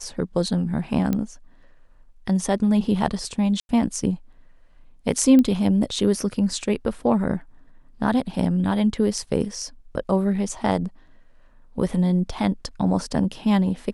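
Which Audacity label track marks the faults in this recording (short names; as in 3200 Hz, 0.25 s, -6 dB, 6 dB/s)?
1.130000	1.130000	pop -12 dBFS
3.600000	3.690000	gap 91 ms
5.390000	5.390000	pop -10 dBFS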